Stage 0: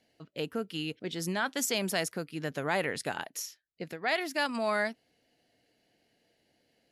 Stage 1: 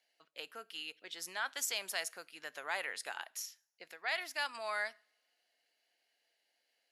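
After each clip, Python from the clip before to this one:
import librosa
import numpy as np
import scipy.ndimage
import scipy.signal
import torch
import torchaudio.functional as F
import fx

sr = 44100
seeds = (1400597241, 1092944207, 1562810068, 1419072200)

y = scipy.signal.sosfilt(scipy.signal.butter(2, 920.0, 'highpass', fs=sr, output='sos'), x)
y = fx.rev_double_slope(y, sr, seeds[0], early_s=0.46, late_s=1.9, knee_db=-27, drr_db=20.0)
y = y * librosa.db_to_amplitude(-4.5)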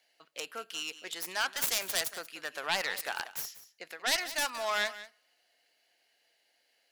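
y = fx.self_delay(x, sr, depth_ms=0.22)
y = y + 10.0 ** (-15.5 / 20.0) * np.pad(y, (int(185 * sr / 1000.0), 0))[:len(y)]
y = y * librosa.db_to_amplitude(7.5)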